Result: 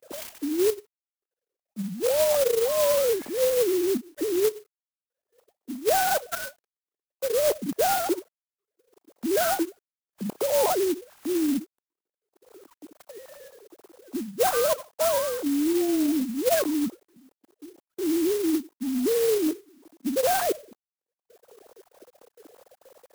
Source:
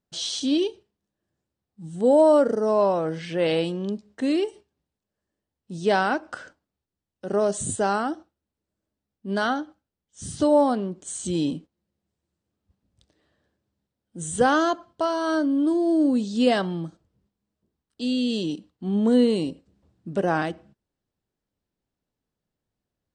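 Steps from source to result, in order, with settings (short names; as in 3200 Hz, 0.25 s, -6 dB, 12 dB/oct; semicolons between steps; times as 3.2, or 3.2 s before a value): sine-wave speech; LPF 3000 Hz 12 dB/oct; in parallel at -3 dB: upward compressor, threshold -21 dBFS; on the sum: tilt -4.5 dB/oct; reverse; compressor 16:1, threshold -21 dBFS, peak gain reduction 21.5 dB; reverse; bit-crush 11-bit; gate -56 dBFS, range -25 dB; HPF 290 Hz 12 dB/oct; clock jitter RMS 0.097 ms; gain +1.5 dB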